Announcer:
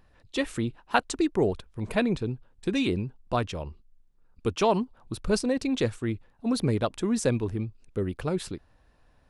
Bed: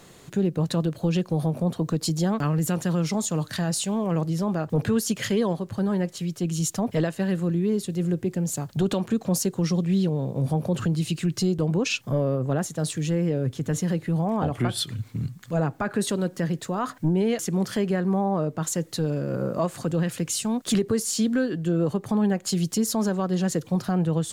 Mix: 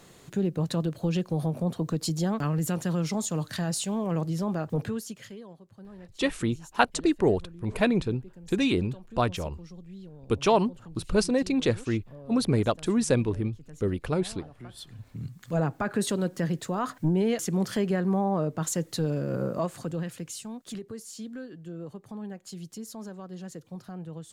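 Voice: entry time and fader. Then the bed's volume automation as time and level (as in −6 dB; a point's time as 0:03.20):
5.85 s, +1.5 dB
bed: 0:04.71 −3.5 dB
0:05.43 −22 dB
0:14.54 −22 dB
0:15.49 −2 dB
0:19.42 −2 dB
0:20.80 −16 dB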